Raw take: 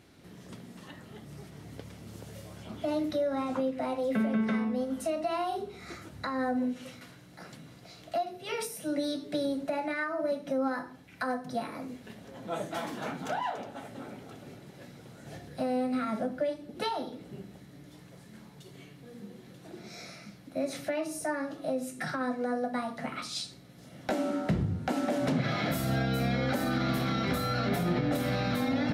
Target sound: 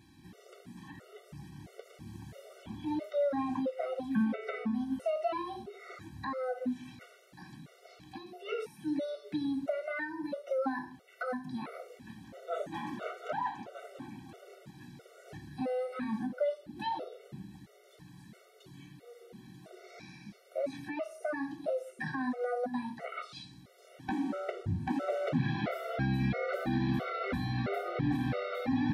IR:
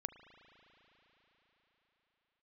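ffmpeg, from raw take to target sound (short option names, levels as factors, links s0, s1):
-filter_complex "[0:a]acrossover=split=3200[s0][s1];[s1]acompressor=threshold=0.00112:ratio=4:attack=1:release=60[s2];[s0][s2]amix=inputs=2:normalize=0,afftfilt=real='re*gt(sin(2*PI*1.5*pts/sr)*(1-2*mod(floor(b*sr/1024/380),2)),0)':imag='im*gt(sin(2*PI*1.5*pts/sr)*(1-2*mod(floor(b*sr/1024/380),2)),0)':win_size=1024:overlap=0.75"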